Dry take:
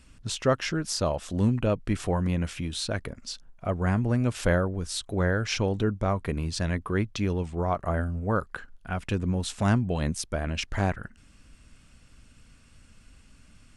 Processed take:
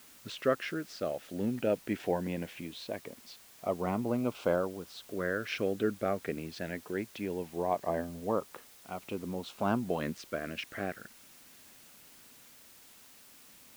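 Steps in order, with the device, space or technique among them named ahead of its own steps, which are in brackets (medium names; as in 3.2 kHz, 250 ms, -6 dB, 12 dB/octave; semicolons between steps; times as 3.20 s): shortwave radio (band-pass 280–2600 Hz; tremolo 0.5 Hz, depth 38%; LFO notch saw up 0.2 Hz 800–2000 Hz; white noise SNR 21 dB)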